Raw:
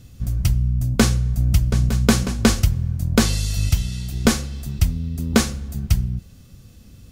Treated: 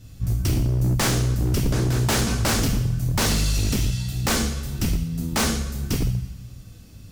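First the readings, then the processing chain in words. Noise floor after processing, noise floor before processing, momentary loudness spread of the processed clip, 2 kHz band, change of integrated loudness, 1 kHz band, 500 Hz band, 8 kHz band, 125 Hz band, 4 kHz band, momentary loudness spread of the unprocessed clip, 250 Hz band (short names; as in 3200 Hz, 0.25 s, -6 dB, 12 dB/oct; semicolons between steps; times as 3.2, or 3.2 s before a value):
-44 dBFS, -46 dBFS, 6 LU, -0.5 dB, -2.0 dB, +1.0 dB, -2.5 dB, +0.5 dB, -1.5 dB, 0.0 dB, 8 LU, -4.0 dB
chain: two-slope reverb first 0.66 s, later 1.9 s, DRR -3.5 dB; wavefolder -12 dBFS; gain -3.5 dB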